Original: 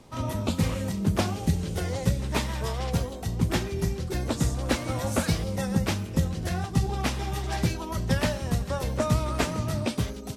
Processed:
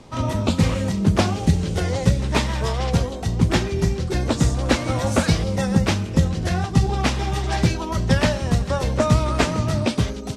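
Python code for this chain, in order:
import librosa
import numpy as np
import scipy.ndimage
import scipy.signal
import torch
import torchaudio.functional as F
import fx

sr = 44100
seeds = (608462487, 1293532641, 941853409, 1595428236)

y = scipy.signal.sosfilt(scipy.signal.butter(2, 7800.0, 'lowpass', fs=sr, output='sos'), x)
y = y * 10.0 ** (7.0 / 20.0)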